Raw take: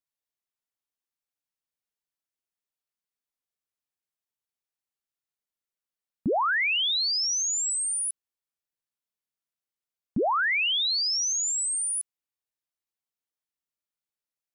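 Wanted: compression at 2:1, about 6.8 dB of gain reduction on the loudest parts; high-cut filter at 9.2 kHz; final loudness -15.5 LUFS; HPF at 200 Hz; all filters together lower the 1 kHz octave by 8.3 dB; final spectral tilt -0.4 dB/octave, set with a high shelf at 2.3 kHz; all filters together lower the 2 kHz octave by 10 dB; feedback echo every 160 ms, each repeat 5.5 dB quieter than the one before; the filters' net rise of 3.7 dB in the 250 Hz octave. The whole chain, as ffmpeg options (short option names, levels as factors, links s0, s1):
-af "highpass=200,lowpass=9200,equalizer=f=250:t=o:g=7,equalizer=f=1000:t=o:g=-8,equalizer=f=2000:t=o:g=-8.5,highshelf=f=2300:g=-4,acompressor=threshold=0.0251:ratio=2,aecho=1:1:160|320|480|640|800|960|1120:0.531|0.281|0.149|0.079|0.0419|0.0222|0.0118,volume=5.62"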